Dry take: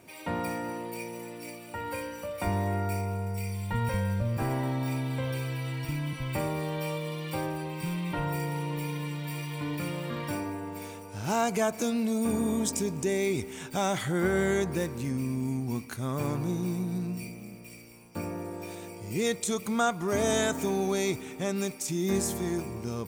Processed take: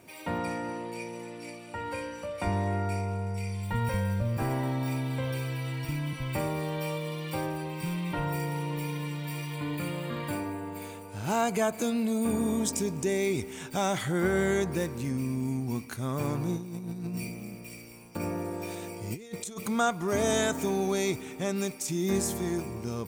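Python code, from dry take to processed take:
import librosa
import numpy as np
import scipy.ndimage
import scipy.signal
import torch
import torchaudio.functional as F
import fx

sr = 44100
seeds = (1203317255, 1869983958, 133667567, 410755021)

y = fx.lowpass(x, sr, hz=8200.0, slope=12, at=(0.38, 3.63))
y = fx.notch(y, sr, hz=5600.0, q=5.6, at=(9.56, 12.41))
y = fx.over_compress(y, sr, threshold_db=-34.0, ratio=-0.5, at=(16.56, 19.68))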